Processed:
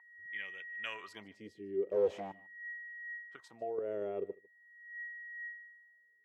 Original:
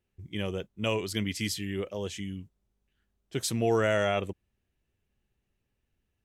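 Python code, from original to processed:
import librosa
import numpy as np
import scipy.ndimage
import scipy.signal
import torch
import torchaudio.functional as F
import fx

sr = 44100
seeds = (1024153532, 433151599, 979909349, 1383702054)

y = fx.high_shelf(x, sr, hz=2300.0, db=9.0, at=(0.72, 1.23))
y = fx.leveller(y, sr, passes=5, at=(1.89, 2.32))
y = y + 10.0 ** (-42.0 / 20.0) * np.sin(2.0 * np.pi * 1900.0 * np.arange(len(y)) / sr)
y = fx.wah_lfo(y, sr, hz=0.43, low_hz=380.0, high_hz=2200.0, q=6.2)
y = fx.level_steps(y, sr, step_db=10, at=(3.36, 4.02))
y = y + 10.0 ** (-23.0 / 20.0) * np.pad(y, (int(150 * sr / 1000.0), 0))[:len(y)]
y = y * 10.0 ** (2.5 / 20.0)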